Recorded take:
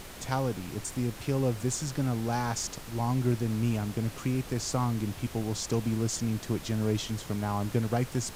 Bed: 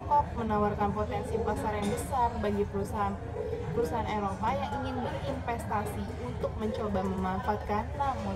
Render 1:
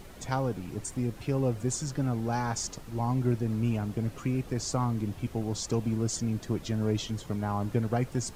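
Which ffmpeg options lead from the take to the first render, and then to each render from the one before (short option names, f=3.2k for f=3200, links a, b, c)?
-af "afftdn=nr=9:nf=-44"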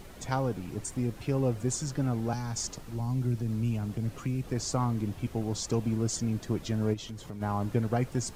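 -filter_complex "[0:a]asettb=1/sr,asplit=3[a][b][c];[a]atrim=end=2.334[d];[b]atrim=start=2.33:end=4.44,asetpts=PTS-STARTPTS,afade=t=in:d=0.004:c=qsin,afade=t=out:st=2.106:d=0.004:c=qsin,acrossover=split=230|3000[e][f][g];[f]acompressor=threshold=-39dB:ratio=6:attack=3.2:release=140:knee=2.83:detection=peak[h];[e][h][g]amix=inputs=3:normalize=0[i];[c]atrim=start=4.436[j];[d][i]acrossfade=d=0.004:c1=hsin:c2=qsin[k];[k][j]acrossfade=d=0.004:c1=qsin:c2=hsin,asplit=3[l][m][n];[l]afade=t=out:st=6.93:d=0.02[o];[m]acompressor=threshold=-39dB:ratio=2.5:attack=3.2:release=140:knee=1:detection=peak,afade=t=in:st=6.93:d=0.02,afade=t=out:st=7.4:d=0.02[p];[n]afade=t=in:st=7.4:d=0.02[q];[o][p][q]amix=inputs=3:normalize=0"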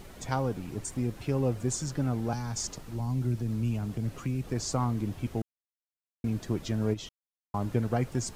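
-filter_complex "[0:a]asplit=5[a][b][c][d][e];[a]atrim=end=5.42,asetpts=PTS-STARTPTS,afade=t=out:st=5.416:d=0.004:c=hsin[f];[b]atrim=start=5.42:end=6.24,asetpts=PTS-STARTPTS,volume=0[g];[c]atrim=start=6.24:end=7.09,asetpts=PTS-STARTPTS,afade=t=in:d=0.004:c=hsin,afade=t=out:st=0.846:d=0.004:c=hsin[h];[d]atrim=start=7.09:end=7.54,asetpts=PTS-STARTPTS,volume=0[i];[e]atrim=start=7.54,asetpts=PTS-STARTPTS,afade=t=in:d=0.004:c=hsin[j];[f][g][h][i][j]concat=n=5:v=0:a=1"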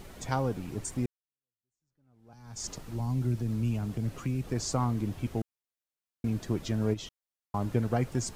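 -filter_complex "[0:a]asplit=2[a][b];[a]atrim=end=1.06,asetpts=PTS-STARTPTS,afade=t=out:st=1.056:d=0.004:c=hsin[c];[b]atrim=start=1.06,asetpts=PTS-STARTPTS,afade=t=in:d=1.63:c=exp[d];[c][d]concat=n=2:v=0:a=1"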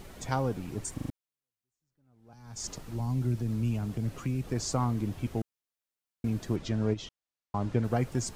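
-filter_complex "[0:a]asettb=1/sr,asplit=3[a][b][c];[a]atrim=end=6.564[d];[b]atrim=start=6.56:end=7.84,asetpts=PTS-STARTPTS,afade=t=in:d=0.004:c=qsin,afade=t=out:st=1.276:d=0.004:c=qsin,lowpass=6.5k[e];[c]atrim=start=7.836[f];[d][e]acrossfade=d=0.004:c1=hsin:c2=qsin[g];[g][f]acrossfade=d=0.004:c1=qsin:c2=hsin,asplit=5[h][i][j][k][l];[h]atrim=end=0.982[m];[i]atrim=start=0.938:end=0.982[n];[j]atrim=start=0.938:end=0.982[o];[k]atrim=start=0.938:end=0.982[p];[l]atrim=start=1.098[q];[m][n]acrossfade=d=0.004:c1=hsin:c2=hsin[r];[r][o]acrossfade=d=0.004:c1=hsin:c2=hsin[s];[s][p]acrossfade=d=0.004:c1=hsin:c2=hsin[t];[t][q]acrossfade=d=0.004:c1=hsin:c2=hsin"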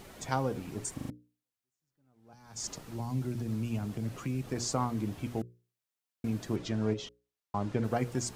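-af "lowshelf=f=71:g=-11.5,bandreject=f=60:t=h:w=6,bandreject=f=120:t=h:w=6,bandreject=f=180:t=h:w=6,bandreject=f=240:t=h:w=6,bandreject=f=300:t=h:w=6,bandreject=f=360:t=h:w=6,bandreject=f=420:t=h:w=6,bandreject=f=480:t=h:w=6,bandreject=f=540:t=h:w=6"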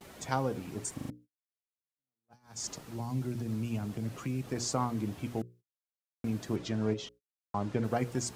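-af "highpass=f=61:p=1,agate=range=-31dB:threshold=-54dB:ratio=16:detection=peak"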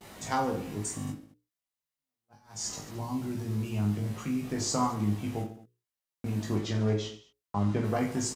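-filter_complex "[0:a]asplit=2[a][b];[b]adelay=19,volume=-4.5dB[c];[a][c]amix=inputs=2:normalize=0,aecho=1:1:20|48|87.2|142.1|218.9:0.631|0.398|0.251|0.158|0.1"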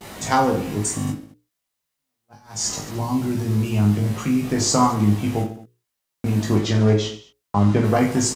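-af "volume=11dB"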